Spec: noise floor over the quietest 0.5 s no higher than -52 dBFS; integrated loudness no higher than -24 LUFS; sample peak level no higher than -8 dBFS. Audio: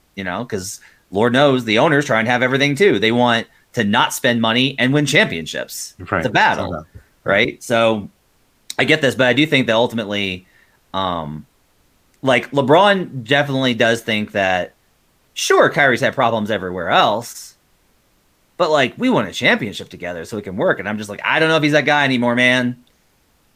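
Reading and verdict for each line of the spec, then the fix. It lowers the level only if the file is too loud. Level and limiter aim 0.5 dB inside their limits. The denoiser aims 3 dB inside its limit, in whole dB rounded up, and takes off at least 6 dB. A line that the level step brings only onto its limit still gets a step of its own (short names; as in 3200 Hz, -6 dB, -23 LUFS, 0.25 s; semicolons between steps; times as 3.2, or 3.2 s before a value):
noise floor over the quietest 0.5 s -59 dBFS: OK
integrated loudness -16.5 LUFS: fail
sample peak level -2.0 dBFS: fail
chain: gain -8 dB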